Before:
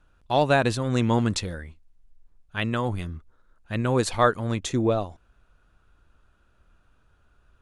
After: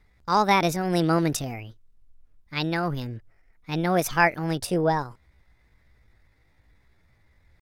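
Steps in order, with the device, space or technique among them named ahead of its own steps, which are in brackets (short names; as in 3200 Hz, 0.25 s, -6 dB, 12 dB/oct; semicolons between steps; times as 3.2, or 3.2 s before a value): chipmunk voice (pitch shift +6 st)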